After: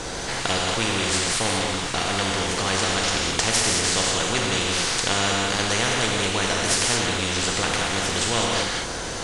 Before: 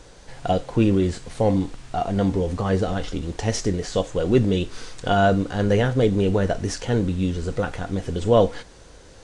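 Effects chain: gated-style reverb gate 240 ms flat, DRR 0 dB; spectrum-flattening compressor 4:1

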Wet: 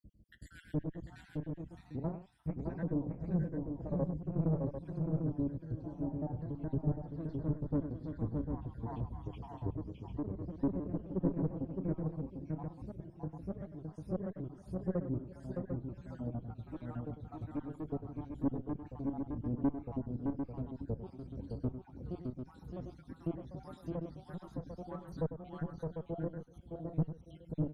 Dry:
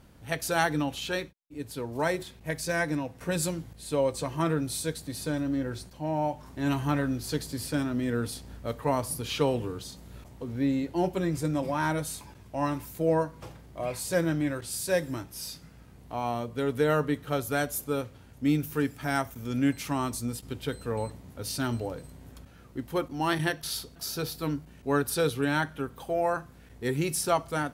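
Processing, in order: random holes in the spectrogram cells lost 78%; FFT filter 170 Hz 0 dB, 300 Hz -5 dB, 1.7 kHz -28 dB; echo from a far wall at 200 m, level -18 dB; valve stage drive 30 dB, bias 0.55; ever faster or slower copies 150 ms, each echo +1 st, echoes 2, each echo -6 dB; on a send: multi-tap echo 99/614/646/748 ms -11.5/-4.5/-14.5/-7 dB; on the sum: low-pass that closes with the level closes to 1.7 kHz, closed at -39 dBFS; trim +5 dB

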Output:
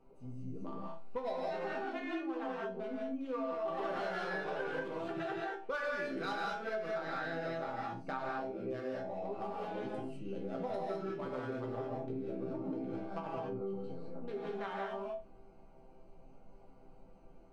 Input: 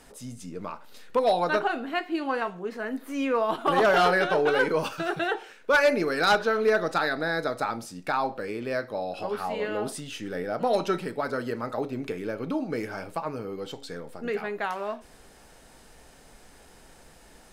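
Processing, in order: local Wiener filter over 25 samples; low-pass 4 kHz 6 dB/octave; chord resonator C3 major, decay 0.26 s; gated-style reverb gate 230 ms rising, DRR -3.5 dB; compression 5:1, threshold -41 dBFS, peak gain reduction 13 dB; trim +5.5 dB

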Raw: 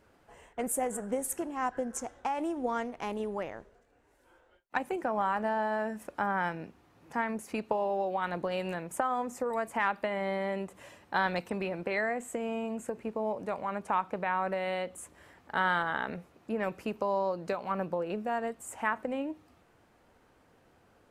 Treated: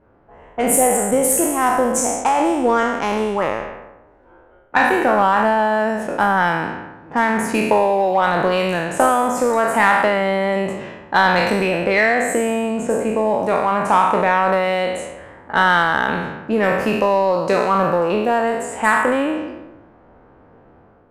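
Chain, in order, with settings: spectral sustain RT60 1.12 s; level-controlled noise filter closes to 1.1 kHz, open at -29 dBFS; in parallel at -9 dB: overload inside the chain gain 26.5 dB; on the sum: level rider gain up to 6.5 dB; trim +4.5 dB

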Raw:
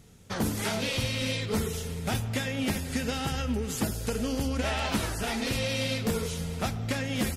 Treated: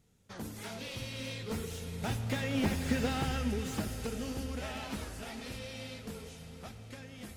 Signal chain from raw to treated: Doppler pass-by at 2.87 s, 6 m/s, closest 3.2 m; echo that smears into a reverb 547 ms, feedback 58%, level -13 dB; slew-rate limiter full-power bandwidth 42 Hz

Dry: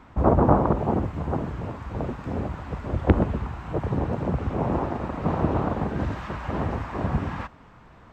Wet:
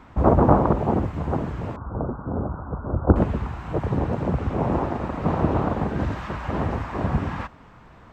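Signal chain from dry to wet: 1.76–3.16 s: steep low-pass 1.5 kHz 96 dB/octave; trim +2 dB

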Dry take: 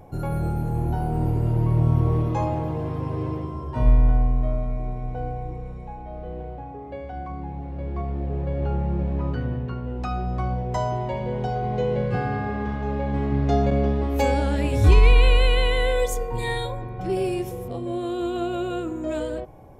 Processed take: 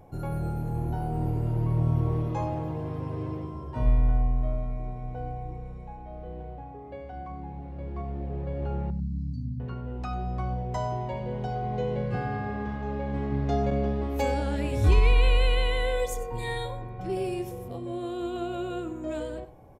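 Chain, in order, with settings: 8.90–9.60 s: brick-wall FIR band-stop 280–4000 Hz; delay 96 ms -15.5 dB; trim -5.5 dB

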